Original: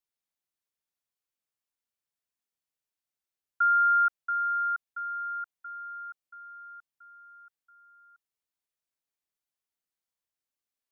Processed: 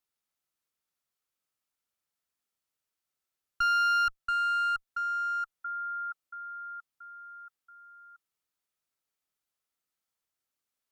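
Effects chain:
in parallel at −1.5 dB: downward compressor 6 to 1, threshold −37 dBFS, peak gain reduction 14.5 dB
on the sum: asymmetric clip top −29 dBFS, bottom −20 dBFS
hollow resonant body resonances 1,300 Hz, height 7 dB, ringing for 25 ms
level −2.5 dB

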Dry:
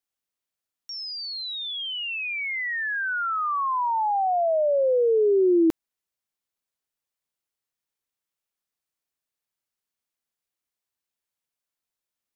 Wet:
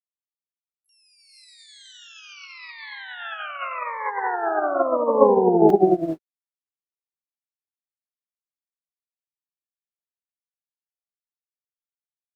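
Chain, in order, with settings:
reverb whose tail is shaped and stops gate 490 ms rising, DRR −0.5 dB
pitch-shifted copies added −12 semitones −11 dB, +7 semitones −18 dB, +12 semitones −7 dB
expander for the loud parts 2.5 to 1, over −34 dBFS
level +3.5 dB

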